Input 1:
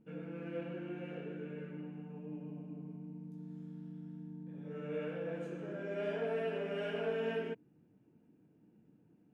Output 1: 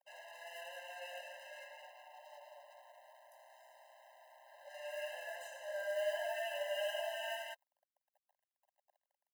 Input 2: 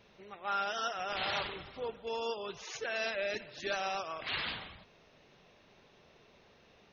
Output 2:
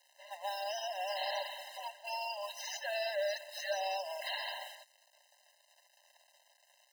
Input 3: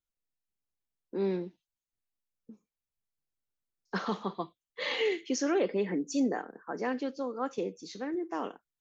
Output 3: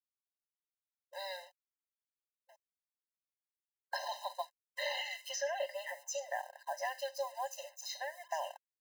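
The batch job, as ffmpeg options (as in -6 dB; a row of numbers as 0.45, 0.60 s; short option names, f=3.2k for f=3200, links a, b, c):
-filter_complex "[0:a]aeval=exprs='sgn(val(0))*max(abs(val(0))-0.00106,0)':c=same,acrossover=split=480|1200|4200[a][b][c][d];[a]acompressor=threshold=-34dB:ratio=4[e];[b]acompressor=threshold=-49dB:ratio=4[f];[c]acompressor=threshold=-52dB:ratio=4[g];[d]acompressor=threshold=-58dB:ratio=4[h];[e][f][g][h]amix=inputs=4:normalize=0,aemphasis=mode=production:type=50kf,afftfilt=real='re*eq(mod(floor(b*sr/1024/530),2),1)':imag='im*eq(mod(floor(b*sr/1024/530),2),1)':win_size=1024:overlap=0.75,volume=8dB"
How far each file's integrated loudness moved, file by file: -0.5, -2.0, -7.0 LU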